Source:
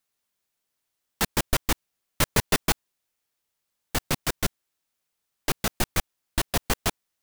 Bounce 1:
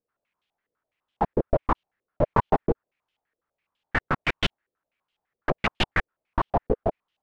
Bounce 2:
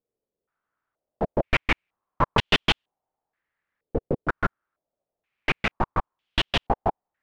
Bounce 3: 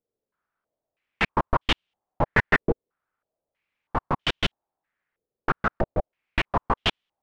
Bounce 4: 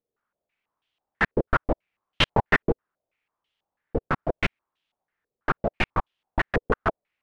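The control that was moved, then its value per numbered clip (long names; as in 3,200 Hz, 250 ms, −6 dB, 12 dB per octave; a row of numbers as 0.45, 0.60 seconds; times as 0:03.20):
low-pass on a step sequencer, speed: 12, 2.1, 3.1, 6.1 Hertz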